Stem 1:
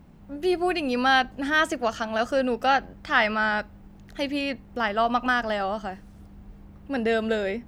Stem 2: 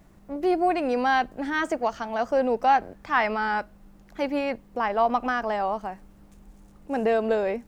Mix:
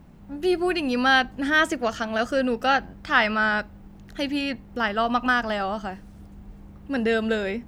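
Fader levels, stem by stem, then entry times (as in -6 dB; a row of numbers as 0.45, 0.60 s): +1.5, -10.0 dB; 0.00, 0.00 s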